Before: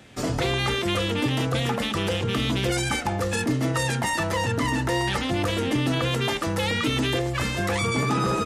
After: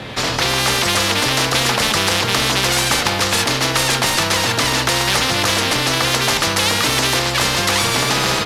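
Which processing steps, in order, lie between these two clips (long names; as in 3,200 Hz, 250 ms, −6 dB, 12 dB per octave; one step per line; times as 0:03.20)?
variable-slope delta modulation 64 kbit/s
low-shelf EQ 330 Hz +6 dB
hum removal 45.55 Hz, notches 33
automatic gain control gain up to 11.5 dB
octave-band graphic EQ 125/500/1,000/2,000/4,000/8,000 Hz +11/+7/+11/+4/+11/−6 dB
every bin compressed towards the loudest bin 4 to 1
level −8.5 dB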